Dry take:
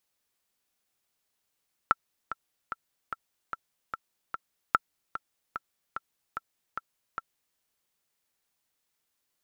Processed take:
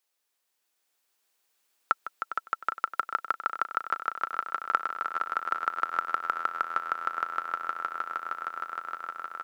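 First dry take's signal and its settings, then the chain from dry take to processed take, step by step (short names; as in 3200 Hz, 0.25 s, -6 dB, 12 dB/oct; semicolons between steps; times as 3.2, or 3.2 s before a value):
metronome 148 bpm, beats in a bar 7, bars 2, 1340 Hz, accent 13 dB -7 dBFS
HPF 360 Hz 12 dB/oct; swelling echo 0.155 s, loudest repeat 8, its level -3.5 dB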